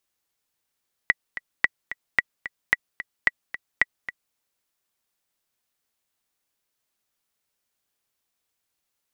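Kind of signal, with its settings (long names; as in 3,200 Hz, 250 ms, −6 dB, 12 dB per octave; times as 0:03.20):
click track 221 BPM, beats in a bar 2, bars 6, 1,950 Hz, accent 14 dB −4 dBFS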